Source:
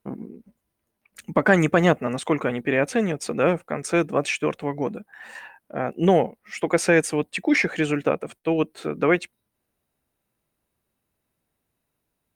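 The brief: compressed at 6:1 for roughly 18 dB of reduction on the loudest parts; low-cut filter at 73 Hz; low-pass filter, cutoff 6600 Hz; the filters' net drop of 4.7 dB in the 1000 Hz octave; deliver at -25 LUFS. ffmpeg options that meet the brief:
-af "highpass=73,lowpass=6.6k,equalizer=f=1k:t=o:g=-7,acompressor=threshold=-34dB:ratio=6,volume=13.5dB"

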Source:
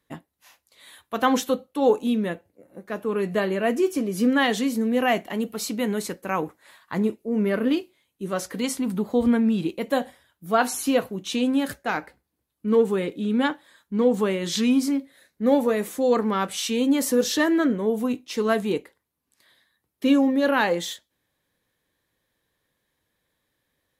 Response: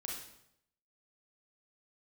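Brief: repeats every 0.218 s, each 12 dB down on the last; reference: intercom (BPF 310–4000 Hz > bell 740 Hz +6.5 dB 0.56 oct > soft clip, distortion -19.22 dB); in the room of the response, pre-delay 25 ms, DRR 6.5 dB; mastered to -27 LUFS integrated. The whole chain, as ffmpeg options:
-filter_complex "[0:a]aecho=1:1:218|436|654:0.251|0.0628|0.0157,asplit=2[a][b];[1:a]atrim=start_sample=2205,adelay=25[c];[b][c]afir=irnorm=-1:irlink=0,volume=-5.5dB[d];[a][d]amix=inputs=2:normalize=0,highpass=310,lowpass=4k,equalizer=f=740:t=o:w=0.56:g=6.5,asoftclip=threshold=-10.5dB,volume=-2.5dB"

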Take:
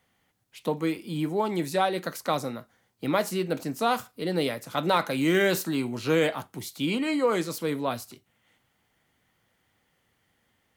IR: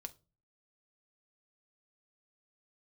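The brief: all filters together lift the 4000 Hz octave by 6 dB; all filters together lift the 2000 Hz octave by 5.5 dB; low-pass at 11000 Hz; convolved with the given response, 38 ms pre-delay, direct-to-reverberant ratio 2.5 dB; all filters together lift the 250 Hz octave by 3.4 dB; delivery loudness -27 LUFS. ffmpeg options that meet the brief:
-filter_complex "[0:a]lowpass=11k,equalizer=f=250:t=o:g=4.5,equalizer=f=2k:t=o:g=5.5,equalizer=f=4k:t=o:g=5.5,asplit=2[a][b];[1:a]atrim=start_sample=2205,adelay=38[c];[b][c]afir=irnorm=-1:irlink=0,volume=2dB[d];[a][d]amix=inputs=2:normalize=0,volume=-4.5dB"

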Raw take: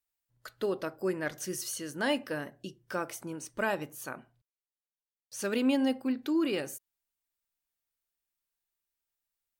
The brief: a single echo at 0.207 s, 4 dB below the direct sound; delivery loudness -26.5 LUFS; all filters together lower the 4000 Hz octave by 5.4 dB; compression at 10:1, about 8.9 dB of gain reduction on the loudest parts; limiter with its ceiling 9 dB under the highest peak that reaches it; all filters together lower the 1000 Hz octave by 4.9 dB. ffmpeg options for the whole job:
-af "equalizer=f=1k:t=o:g=-6,equalizer=f=4k:t=o:g=-8,acompressor=threshold=-33dB:ratio=10,alimiter=level_in=8.5dB:limit=-24dB:level=0:latency=1,volume=-8.5dB,aecho=1:1:207:0.631,volume=15dB"

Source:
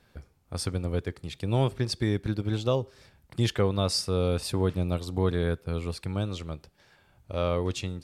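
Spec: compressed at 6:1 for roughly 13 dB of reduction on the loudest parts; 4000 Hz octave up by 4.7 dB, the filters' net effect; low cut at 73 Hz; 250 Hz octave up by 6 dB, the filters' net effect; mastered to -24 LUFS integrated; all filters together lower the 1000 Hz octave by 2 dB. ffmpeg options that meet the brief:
-af "highpass=73,equalizer=f=250:t=o:g=8.5,equalizer=f=1k:t=o:g=-3.5,equalizer=f=4k:t=o:g=6,acompressor=threshold=-31dB:ratio=6,volume=12.5dB"

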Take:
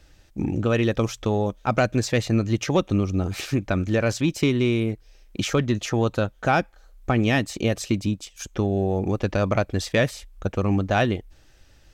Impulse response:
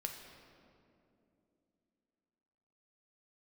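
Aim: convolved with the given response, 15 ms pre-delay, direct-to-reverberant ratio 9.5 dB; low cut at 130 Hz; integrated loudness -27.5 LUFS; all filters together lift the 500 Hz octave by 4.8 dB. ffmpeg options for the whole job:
-filter_complex "[0:a]highpass=130,equalizer=f=500:t=o:g=6,asplit=2[a][b];[1:a]atrim=start_sample=2205,adelay=15[c];[b][c]afir=irnorm=-1:irlink=0,volume=-8.5dB[d];[a][d]amix=inputs=2:normalize=0,volume=-6dB"

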